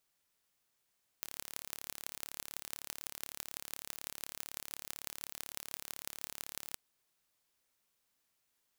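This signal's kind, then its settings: pulse train 35.9/s, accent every 6, -11 dBFS 5.52 s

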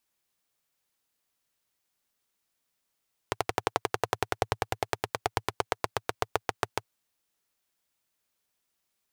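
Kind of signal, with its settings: single-cylinder engine model, changing speed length 3.59 s, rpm 1400, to 800, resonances 110/440/740 Hz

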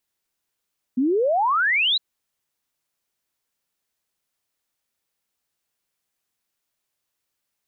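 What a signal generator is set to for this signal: log sweep 240 Hz -> 4100 Hz 1.01 s -17 dBFS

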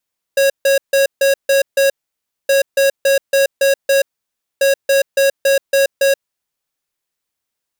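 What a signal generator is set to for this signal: beep pattern square 549 Hz, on 0.13 s, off 0.15 s, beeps 6, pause 0.59 s, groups 3, -12 dBFS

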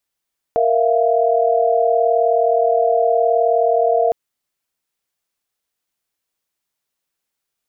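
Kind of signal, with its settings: chord A#4/E5/F5 sine, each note -17 dBFS 3.56 s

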